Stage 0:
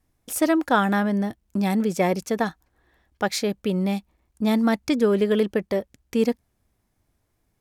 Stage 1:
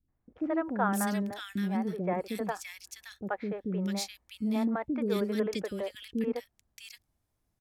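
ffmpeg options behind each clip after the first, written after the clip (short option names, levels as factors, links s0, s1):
-filter_complex "[0:a]acrossover=split=400|2000[s0][s1][s2];[s1]adelay=80[s3];[s2]adelay=650[s4];[s0][s3][s4]amix=inputs=3:normalize=0,volume=0.422"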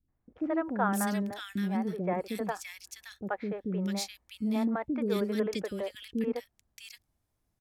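-af anull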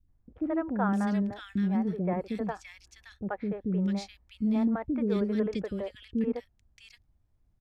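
-filter_complex "[0:a]acrossover=split=9100[s0][s1];[s1]acompressor=threshold=0.00112:ratio=4:attack=1:release=60[s2];[s0][s2]amix=inputs=2:normalize=0,aemphasis=mode=reproduction:type=bsi,volume=0.794"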